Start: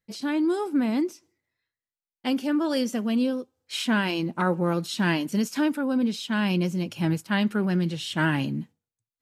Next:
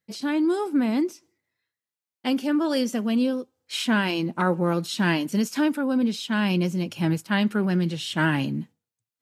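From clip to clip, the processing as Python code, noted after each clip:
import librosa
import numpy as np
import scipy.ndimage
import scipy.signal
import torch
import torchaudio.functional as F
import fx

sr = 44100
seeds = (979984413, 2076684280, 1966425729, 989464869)

y = scipy.signal.sosfilt(scipy.signal.butter(2, 94.0, 'highpass', fs=sr, output='sos'), x)
y = y * librosa.db_to_amplitude(1.5)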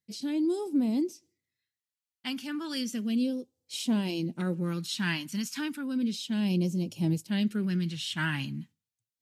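y = fx.phaser_stages(x, sr, stages=2, low_hz=480.0, high_hz=1500.0, hz=0.33, feedback_pct=30)
y = y * librosa.db_to_amplitude(-4.0)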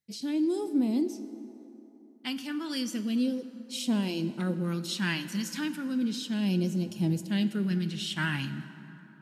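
y = fx.rev_plate(x, sr, seeds[0], rt60_s=3.5, hf_ratio=0.5, predelay_ms=0, drr_db=11.0)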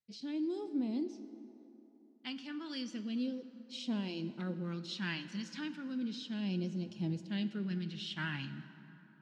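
y = fx.ladder_lowpass(x, sr, hz=6100.0, resonance_pct=20)
y = y * librosa.db_to_amplitude(-3.5)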